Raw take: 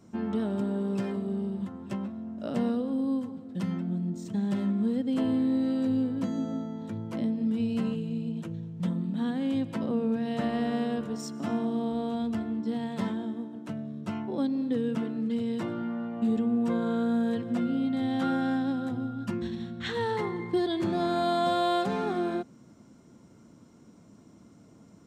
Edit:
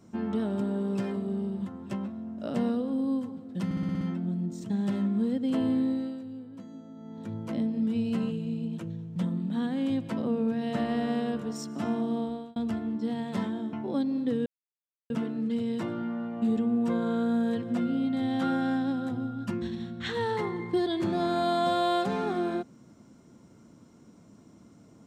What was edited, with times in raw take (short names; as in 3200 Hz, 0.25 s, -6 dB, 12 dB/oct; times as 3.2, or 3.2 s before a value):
3.65 stutter 0.06 s, 7 plays
5.44–7 dip -14 dB, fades 0.42 s
11.83–12.2 fade out
13.37–14.17 cut
14.9 insert silence 0.64 s